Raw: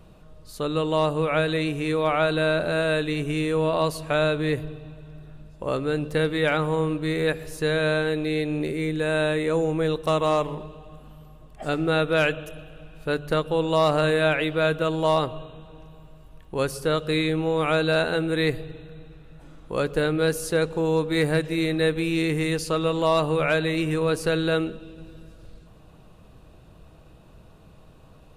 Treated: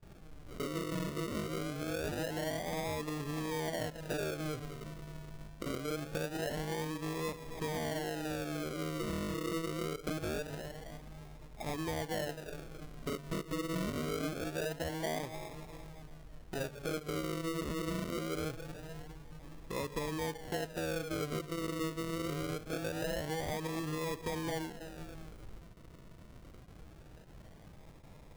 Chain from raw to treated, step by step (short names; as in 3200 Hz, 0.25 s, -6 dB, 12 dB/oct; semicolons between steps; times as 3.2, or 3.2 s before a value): treble ducked by the level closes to 1300 Hz, closed at -17 dBFS; thinning echo 0.287 s, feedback 28%, high-pass 560 Hz, level -18.5 dB; gate with hold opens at -42 dBFS; decimation with a swept rate 42×, swing 60% 0.24 Hz; compressor 2.5:1, threshold -36 dBFS, peak gain reduction 13 dB; gain -3.5 dB